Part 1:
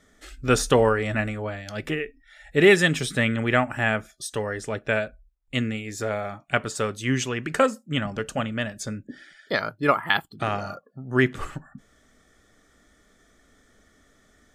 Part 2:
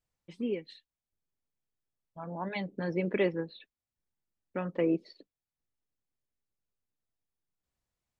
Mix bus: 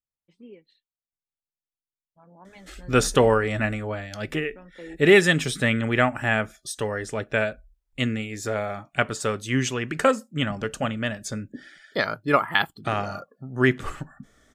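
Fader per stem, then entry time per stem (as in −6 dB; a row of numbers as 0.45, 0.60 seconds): +0.5, −13.0 decibels; 2.45, 0.00 seconds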